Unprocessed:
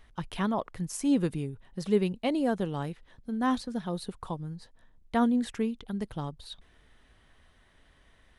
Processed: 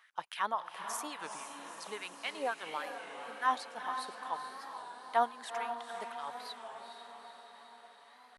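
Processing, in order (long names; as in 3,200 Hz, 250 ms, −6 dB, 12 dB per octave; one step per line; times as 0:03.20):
auto-filter high-pass sine 3.6 Hz 700–1,700 Hz
feedback delay with all-pass diffusion 451 ms, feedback 63%, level −7 dB
wow of a warped record 33 1/3 rpm, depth 100 cents
level −3.5 dB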